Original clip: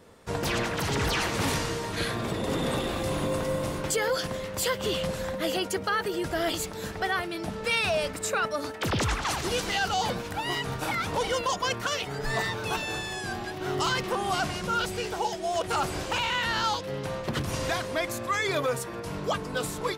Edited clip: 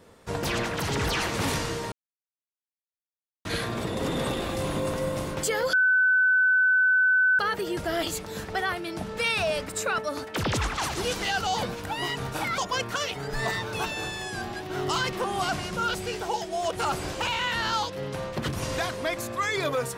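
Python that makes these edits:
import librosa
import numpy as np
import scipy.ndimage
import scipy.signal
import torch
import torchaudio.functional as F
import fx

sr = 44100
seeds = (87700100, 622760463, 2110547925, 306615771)

y = fx.edit(x, sr, fx.insert_silence(at_s=1.92, length_s=1.53),
    fx.bleep(start_s=4.2, length_s=1.66, hz=1510.0, db=-17.5),
    fx.cut(start_s=11.05, length_s=0.44), tone=tone)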